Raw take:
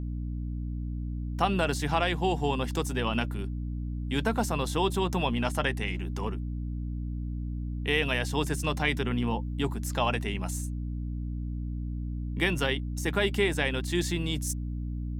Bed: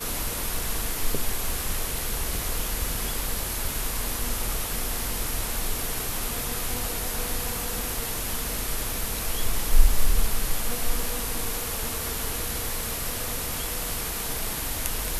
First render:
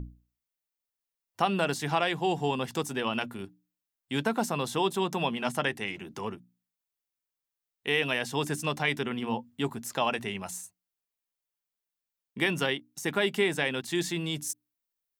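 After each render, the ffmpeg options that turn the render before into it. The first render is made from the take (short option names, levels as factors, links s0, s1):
-af "bandreject=f=60:t=h:w=6,bandreject=f=120:t=h:w=6,bandreject=f=180:t=h:w=6,bandreject=f=240:t=h:w=6,bandreject=f=300:t=h:w=6"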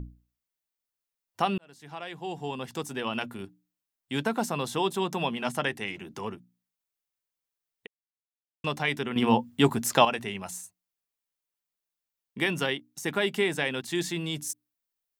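-filter_complex "[0:a]asplit=6[s0][s1][s2][s3][s4][s5];[s0]atrim=end=1.58,asetpts=PTS-STARTPTS,afade=t=out:st=1.576:d=0.004:c=hsin[s6];[s1]atrim=start=1.58:end=7.87,asetpts=PTS-STARTPTS,afade=t=in:d=1.74,afade=t=out:st=6.286:d=0.004:c=hsin[s7];[s2]atrim=start=7.87:end=8.64,asetpts=PTS-STARTPTS,volume=0[s8];[s3]atrim=start=8.64:end=9.162,asetpts=PTS-STARTPTS,afade=t=in:d=0.004:c=hsin[s9];[s4]atrim=start=9.158:end=10.052,asetpts=PTS-STARTPTS,volume=2.82[s10];[s5]atrim=start=10.048[s11];[s6][s7][s8][s9]concat=n=4:v=0:a=1[s12];[s12][s10]acrossfade=d=0.004:c1=hsin:c2=hsin[s13];[s13][s11]acrossfade=d=0.004:c1=hsin:c2=hsin"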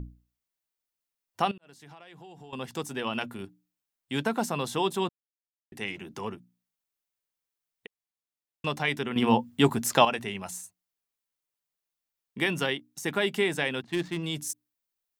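-filter_complex "[0:a]asettb=1/sr,asplit=3[s0][s1][s2];[s0]atrim=end=1.514[s3];[s1]atrim=start=1.51:end=2.53,asetpts=PTS-STARTPTS,afade=t=in:d=0.004:c=qsin,afade=t=out:st=1.016:d=0.004:c=qsin,acompressor=threshold=0.00562:ratio=6:attack=3.2:release=140:knee=1:detection=peak[s4];[s2]atrim=start=2.526[s5];[s3][s4]acrossfade=d=0.004:c1=hsin:c2=qsin[s6];[s6][s5]acrossfade=d=0.004:c1=qsin:c2=hsin,asplit=3[s7][s8][s9];[s7]afade=t=out:st=13.82:d=0.02[s10];[s8]adynamicsmooth=sensitivity=5:basefreq=990,afade=t=in:st=13.82:d=0.02,afade=t=out:st=14.22:d=0.02[s11];[s9]afade=t=in:st=14.22:d=0.02[s12];[s10][s11][s12]amix=inputs=3:normalize=0,asplit=3[s13][s14][s15];[s13]atrim=end=5.09,asetpts=PTS-STARTPTS,afade=t=out:st=5.086:d=0.004:c=hsin[s16];[s14]atrim=start=5.09:end=5.72,asetpts=PTS-STARTPTS,volume=0[s17];[s15]atrim=start=5.72,asetpts=PTS-STARTPTS,afade=t=in:d=0.004:c=hsin[s18];[s16][s17][s18]concat=n=3:v=0:a=1"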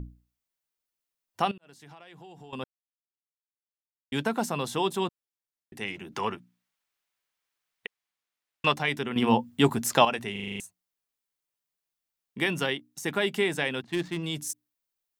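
-filter_complex "[0:a]asettb=1/sr,asplit=3[s0][s1][s2];[s0]atrim=end=6.124[s3];[s1]atrim=start=6.12:end=8.74,asetpts=PTS-STARTPTS,afade=t=in:d=0.004:c=qsin,afade=t=out:st=2.616:d=0.004:c=qsin,equalizer=f=1800:w=0.37:g=10[s4];[s2]atrim=start=8.736[s5];[s3][s4]acrossfade=d=0.004:c1=hsin:c2=qsin[s6];[s6][s5]acrossfade=d=0.004:c1=qsin:c2=hsin,asplit=10[s7][s8][s9][s10][s11][s12][s13][s14][s15][s16];[s7]atrim=end=2.64,asetpts=PTS-STARTPTS,afade=t=out:st=2.636:d=0.004:c=hsin[s17];[s8]atrim=start=2.64:end=4.12,asetpts=PTS-STARTPTS,volume=0[s18];[s9]atrim=start=4.12:end=10.362,asetpts=PTS-STARTPTS,afade=t=in:d=0.004:c=hsin[s19];[s10]atrim=start=10.318:end=10.362[s20];[s11]atrim=start=10.318:end=10.362[s21];[s12]atrim=start=10.318:end=10.362[s22];[s13]atrim=start=10.318:end=10.362[s23];[s14]atrim=start=10.318:end=10.362[s24];[s15]atrim=start=10.318:end=10.362[s25];[s16]atrim=start=10.598[s26];[s17][s18][s19]concat=n=3:v=0:a=1[s27];[s27][s20]acrossfade=d=0.004:c1=hsin:c2=hsin[s28];[s28][s21]acrossfade=d=0.004:c1=hsin:c2=hsin[s29];[s29][s22]acrossfade=d=0.004:c1=hsin:c2=hsin[s30];[s30][s23]acrossfade=d=0.004:c1=hsin:c2=hsin[s31];[s31][s24]acrossfade=d=0.004:c1=hsin:c2=hsin[s32];[s32][s25]acrossfade=d=0.004:c1=hsin:c2=hsin[s33];[s33][s26]acrossfade=d=0.004:c1=hsin:c2=hsin"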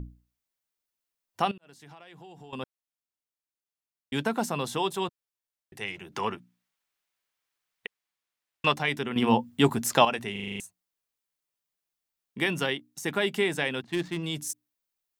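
-filter_complex "[0:a]asettb=1/sr,asplit=3[s0][s1][s2];[s0]atrim=end=4.774[s3];[s1]atrim=start=4.77:end=6.14,asetpts=PTS-STARTPTS,afade=t=in:d=0.004:c=qsin,afade=t=out:st=1.366:d=0.004:c=qsin,equalizer=f=250:t=o:w=0.48:g=-13[s4];[s2]atrim=start=6.136[s5];[s3][s4]acrossfade=d=0.004:c1=hsin:c2=qsin[s6];[s6][s5]acrossfade=d=0.004:c1=qsin:c2=hsin"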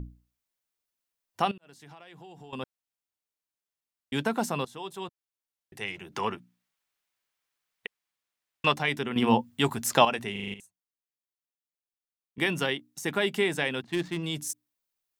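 -filter_complex "[0:a]asettb=1/sr,asplit=3[s0][s1][s2];[s0]atrim=end=9.414[s3];[s1]atrim=start=9.41:end=9.88,asetpts=PTS-STARTPTS,afade=t=in:d=0.004:c=qsin,afade=t=out:st=0.466:d=0.004:c=qsin,equalizer=f=270:w=0.51:g=-6[s4];[s2]atrim=start=9.876[s5];[s3][s4]acrossfade=d=0.004:c1=hsin:c2=qsin[s6];[s6][s5]acrossfade=d=0.004:c1=qsin:c2=hsin,asplit=4[s7][s8][s9][s10];[s7]atrim=end=4.65,asetpts=PTS-STARTPTS,afade=t=out:st=4.646:d=0.004:c=hsin:silence=0.158489[s11];[s8]atrim=start=4.65:end=10.542,asetpts=PTS-STARTPTS,afade=t=in:d=1.15:silence=0.158489[s12];[s9]atrim=start=10.538:end=12.382,asetpts=PTS-STARTPTS,volume=0.251[s13];[s10]atrim=start=12.378[s14];[s11][s12]concat=n=2:v=0:a=1[s15];[s15][s13]acrossfade=d=0.004:c1=hsin:c2=hsin[s16];[s16][s14]acrossfade=d=0.004:c1=hsin:c2=hsin"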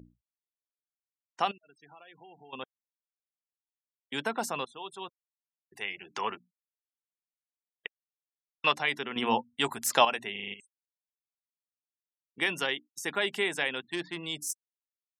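-af "afftfilt=real='re*gte(hypot(re,im),0.00447)':imag='im*gte(hypot(re,im),0.00447)':win_size=1024:overlap=0.75,highpass=f=620:p=1"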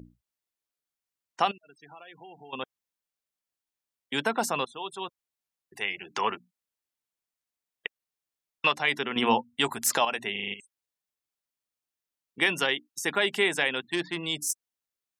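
-af "alimiter=limit=0.168:level=0:latency=1:release=273,acontrast=26"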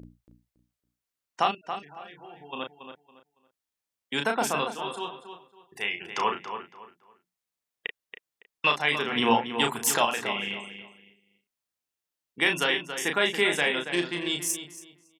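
-filter_complex "[0:a]asplit=2[s0][s1];[s1]adelay=34,volume=0.562[s2];[s0][s2]amix=inputs=2:normalize=0,asplit=2[s3][s4];[s4]adelay=279,lowpass=f=3500:p=1,volume=0.355,asplit=2[s5][s6];[s6]adelay=279,lowpass=f=3500:p=1,volume=0.27,asplit=2[s7][s8];[s8]adelay=279,lowpass=f=3500:p=1,volume=0.27[s9];[s3][s5][s7][s9]amix=inputs=4:normalize=0"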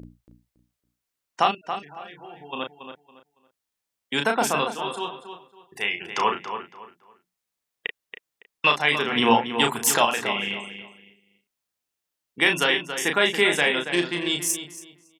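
-af "volume=1.58"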